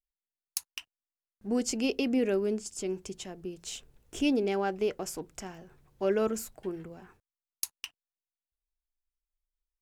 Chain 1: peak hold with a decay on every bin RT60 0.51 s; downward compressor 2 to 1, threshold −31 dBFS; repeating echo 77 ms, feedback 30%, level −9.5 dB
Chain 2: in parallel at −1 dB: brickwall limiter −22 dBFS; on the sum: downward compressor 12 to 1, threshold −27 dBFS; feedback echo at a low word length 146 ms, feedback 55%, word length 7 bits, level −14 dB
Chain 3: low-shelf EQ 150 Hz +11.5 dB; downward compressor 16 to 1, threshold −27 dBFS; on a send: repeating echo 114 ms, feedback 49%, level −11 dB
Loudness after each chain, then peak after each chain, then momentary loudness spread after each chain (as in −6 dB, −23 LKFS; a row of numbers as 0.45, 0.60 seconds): −34.0, −34.0, −35.0 LKFS; −10.5, −9.0, −10.5 dBFS; 14, 10, 13 LU